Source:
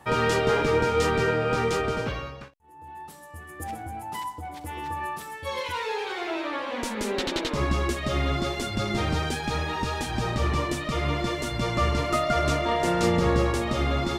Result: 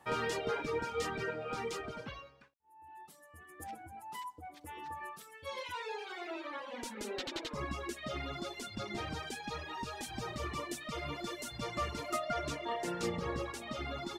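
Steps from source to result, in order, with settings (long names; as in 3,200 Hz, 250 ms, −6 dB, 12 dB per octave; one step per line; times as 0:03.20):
0:10.03–0:12.17: high-shelf EQ 7,800 Hz +8 dB
reverb reduction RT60 1.9 s
low-shelf EQ 160 Hz −8.5 dB
level −9 dB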